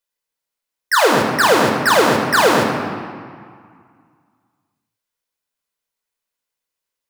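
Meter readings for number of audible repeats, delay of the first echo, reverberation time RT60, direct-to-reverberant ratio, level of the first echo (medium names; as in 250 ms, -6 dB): no echo, no echo, 2.0 s, 0.5 dB, no echo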